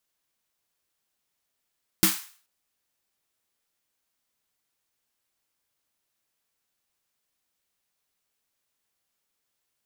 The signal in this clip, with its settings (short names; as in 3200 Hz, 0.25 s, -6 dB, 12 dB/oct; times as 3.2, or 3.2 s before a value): snare drum length 0.43 s, tones 190 Hz, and 320 Hz, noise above 950 Hz, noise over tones 1.5 dB, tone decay 0.18 s, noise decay 0.44 s